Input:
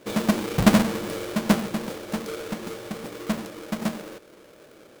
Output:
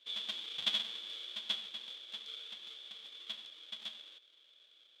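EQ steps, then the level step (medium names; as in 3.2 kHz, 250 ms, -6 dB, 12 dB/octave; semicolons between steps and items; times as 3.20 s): band-pass filter 3.4 kHz, Q 19; +9.0 dB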